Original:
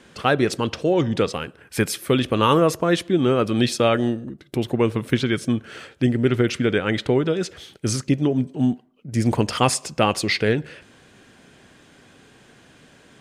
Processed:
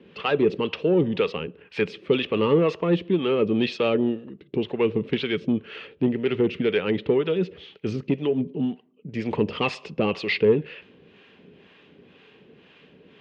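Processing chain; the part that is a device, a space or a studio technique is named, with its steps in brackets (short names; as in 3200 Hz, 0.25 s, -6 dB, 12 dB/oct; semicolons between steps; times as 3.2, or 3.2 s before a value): guitar amplifier with harmonic tremolo (harmonic tremolo 2 Hz, depth 70%, crossover 590 Hz; soft clip -15 dBFS, distortion -16 dB; speaker cabinet 81–3700 Hz, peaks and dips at 120 Hz -6 dB, 180 Hz +6 dB, 430 Hz +9 dB, 700 Hz -5 dB, 1500 Hz -6 dB, 2700 Hz +7 dB)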